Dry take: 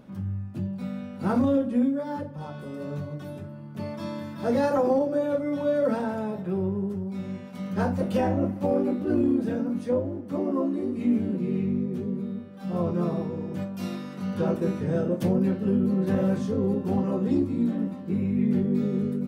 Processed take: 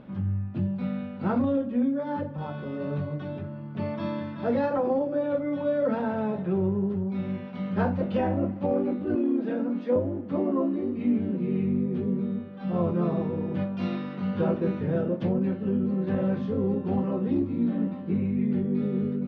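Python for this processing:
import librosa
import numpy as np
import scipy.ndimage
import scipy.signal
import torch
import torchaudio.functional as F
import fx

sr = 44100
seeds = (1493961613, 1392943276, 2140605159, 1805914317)

y = fx.highpass(x, sr, hz=220.0, slope=24, at=(9.15, 9.96))
y = fx.rider(y, sr, range_db=3, speed_s=0.5)
y = scipy.signal.sosfilt(scipy.signal.butter(4, 3600.0, 'lowpass', fs=sr, output='sos'), y)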